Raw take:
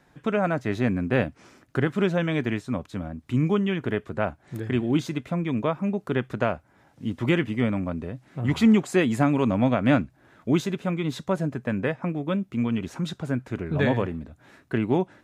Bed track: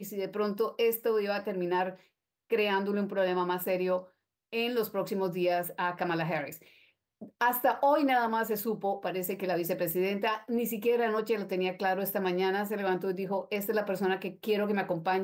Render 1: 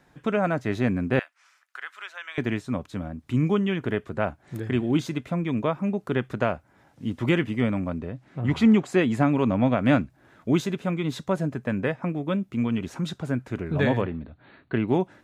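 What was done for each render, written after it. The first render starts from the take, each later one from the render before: 1.19–2.38 ladder high-pass 1000 Hz, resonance 25%; 7.98–9.78 high shelf 7100 Hz -11 dB; 14.01–14.88 brick-wall FIR low-pass 4600 Hz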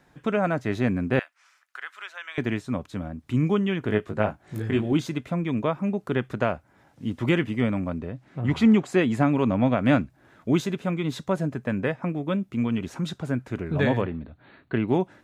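3.87–4.93 doubler 19 ms -4 dB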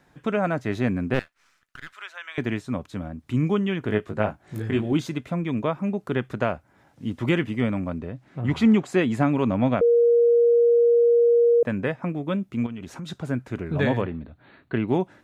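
1.14–1.93 half-wave gain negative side -12 dB; 9.81–11.63 bleep 472 Hz -14 dBFS; 12.66–13.1 compressor, threshold -31 dBFS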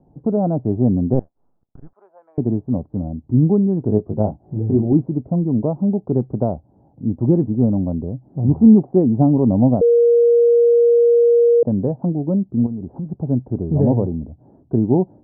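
Chebyshev low-pass 830 Hz, order 4; low shelf 470 Hz +10.5 dB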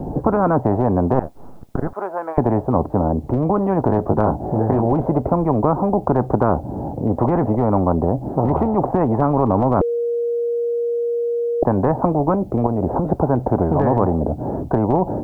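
maximiser +10.5 dB; spectral compressor 4:1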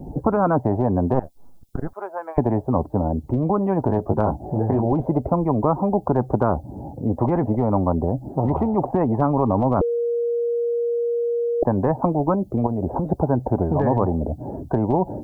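per-bin expansion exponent 1.5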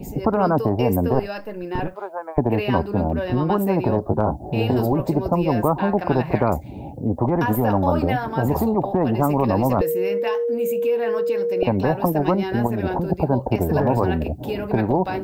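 add bed track +1 dB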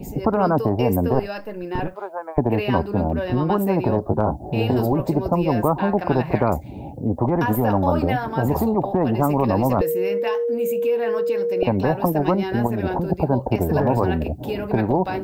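nothing audible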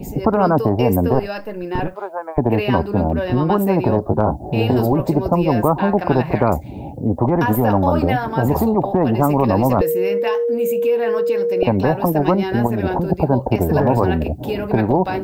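gain +3.5 dB; limiter -3 dBFS, peak gain reduction 2.5 dB

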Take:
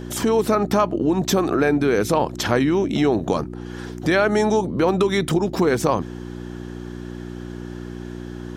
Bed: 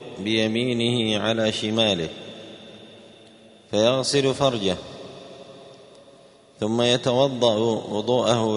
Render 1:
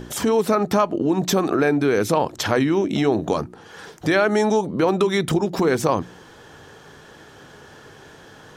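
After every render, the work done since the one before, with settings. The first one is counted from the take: de-hum 60 Hz, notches 6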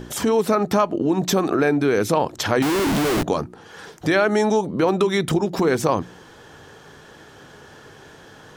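2.62–3.23 Schmitt trigger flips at -32.5 dBFS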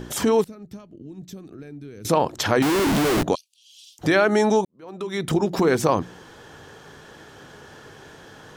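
0.44–2.05 passive tone stack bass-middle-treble 10-0-1; 3.35–3.99 steep high-pass 2800 Hz 72 dB/oct; 4.65–5.4 fade in quadratic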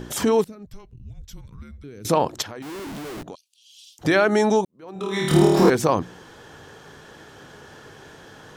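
0.66–1.84 frequency shift -220 Hz; 2.42–4.05 compressor 2.5:1, threshold -42 dBFS; 4.93–5.7 flutter echo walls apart 4.5 m, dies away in 1.2 s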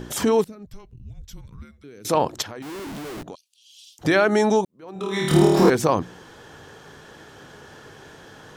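1.65–2.15 HPF 310 Hz 6 dB/oct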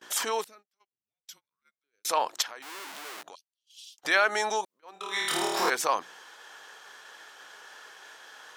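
HPF 970 Hz 12 dB/oct; gate -50 dBFS, range -30 dB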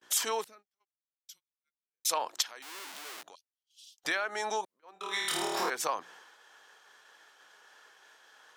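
compressor 12:1, threshold -30 dBFS, peak gain reduction 12.5 dB; three-band expander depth 70%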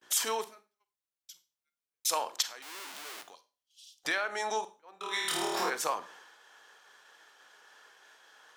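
Schroeder reverb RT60 0.32 s, combs from 32 ms, DRR 12 dB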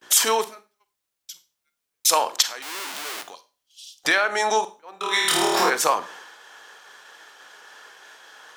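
gain +11.5 dB; limiter -1 dBFS, peak gain reduction 1 dB

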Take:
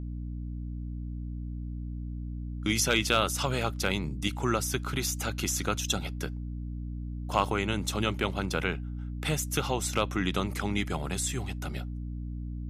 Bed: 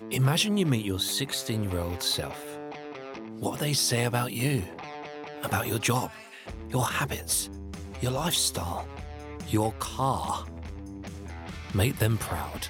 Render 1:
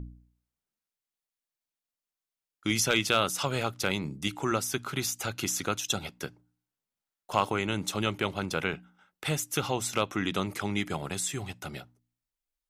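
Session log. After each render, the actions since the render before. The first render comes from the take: de-hum 60 Hz, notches 5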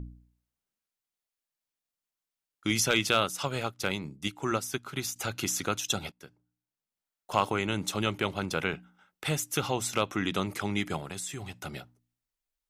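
3.2–5.16 upward expander, over -48 dBFS; 6.12–7.32 fade in, from -17 dB; 10.99–11.6 compressor 2:1, threshold -37 dBFS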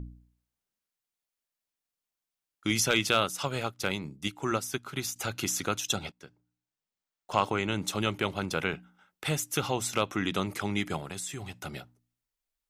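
5.96–7.82 bell 12000 Hz -14.5 dB 0.39 oct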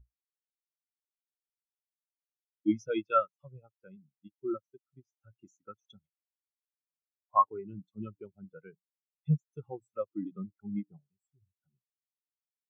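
spectral expander 4:1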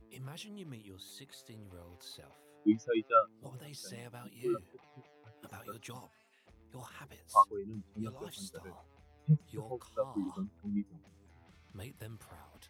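add bed -22.5 dB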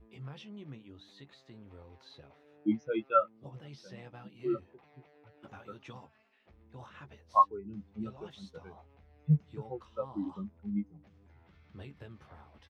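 air absorption 200 m; doubler 14 ms -8 dB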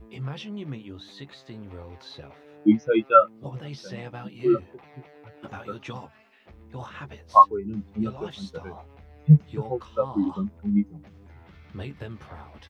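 gain +11.5 dB; limiter -3 dBFS, peak gain reduction 2.5 dB

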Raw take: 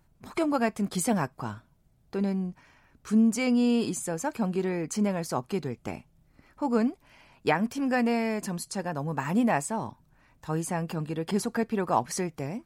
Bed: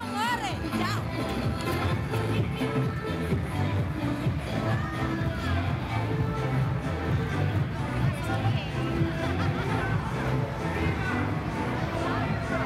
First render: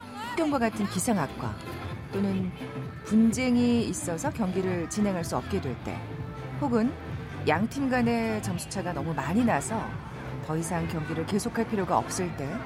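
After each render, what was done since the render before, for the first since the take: add bed -9 dB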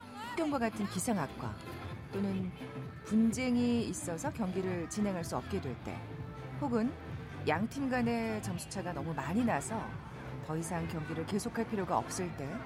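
gain -7 dB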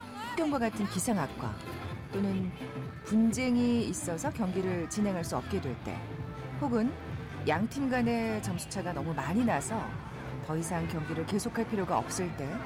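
sample leveller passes 1; reverse; upward compressor, threshold -37 dBFS; reverse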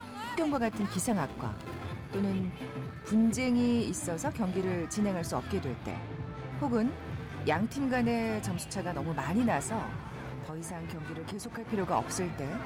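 0.47–1.85 backlash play -44.5 dBFS; 5.91–6.52 air absorption 50 m; 10.15–11.72 compressor, threshold -35 dBFS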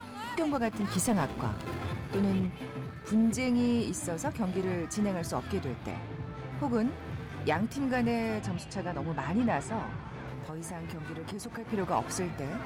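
0.87–2.47 sample leveller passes 1; 8.39–10.28 air absorption 68 m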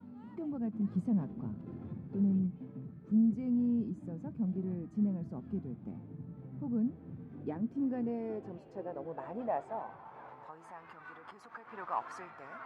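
band-pass sweep 200 Hz -> 1200 Hz, 6.97–10.94

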